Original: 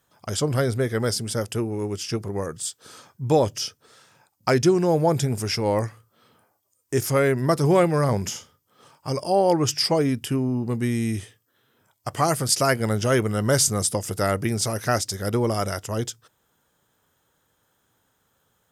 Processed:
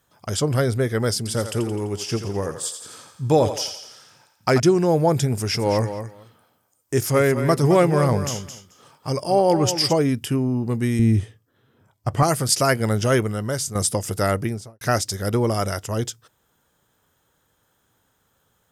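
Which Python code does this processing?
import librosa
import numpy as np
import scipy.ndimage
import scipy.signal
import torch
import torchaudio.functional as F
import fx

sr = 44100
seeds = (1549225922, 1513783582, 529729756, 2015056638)

y = fx.echo_thinned(x, sr, ms=85, feedback_pct=57, hz=420.0, wet_db=-8.0, at=(1.17, 4.6))
y = fx.echo_feedback(y, sr, ms=217, feedback_pct=15, wet_db=-10.0, at=(5.54, 9.92), fade=0.02)
y = fx.tilt_eq(y, sr, slope=-2.5, at=(10.99, 12.23))
y = fx.studio_fade_out(y, sr, start_s=14.31, length_s=0.5)
y = fx.edit(y, sr, fx.fade_out_to(start_s=13.15, length_s=0.6, curve='qua', floor_db=-9.5), tone=tone)
y = fx.low_shelf(y, sr, hz=65.0, db=5.5)
y = y * 10.0 ** (1.5 / 20.0)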